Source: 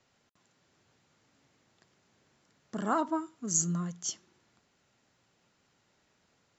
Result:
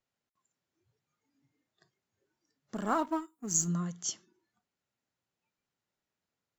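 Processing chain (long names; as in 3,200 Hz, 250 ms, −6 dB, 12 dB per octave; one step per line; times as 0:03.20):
0:02.75–0:03.68: mu-law and A-law mismatch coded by A
noise reduction from a noise print of the clip's start 18 dB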